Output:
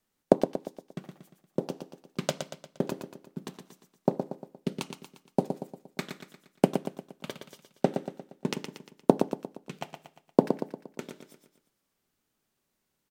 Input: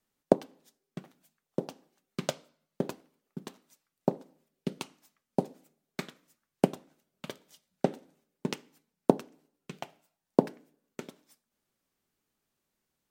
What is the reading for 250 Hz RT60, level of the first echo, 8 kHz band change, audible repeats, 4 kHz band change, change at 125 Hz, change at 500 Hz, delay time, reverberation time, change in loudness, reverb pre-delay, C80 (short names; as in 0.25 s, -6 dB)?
none, -7.5 dB, +3.0 dB, 5, +3.0 dB, +3.0 dB, +3.0 dB, 0.117 s, none, +2.0 dB, none, none